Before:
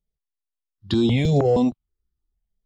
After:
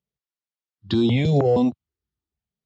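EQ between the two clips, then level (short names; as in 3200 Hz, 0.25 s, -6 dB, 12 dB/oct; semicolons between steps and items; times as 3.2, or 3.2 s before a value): HPF 74 Hz 24 dB/oct; LPF 5500 Hz 12 dB/oct; 0.0 dB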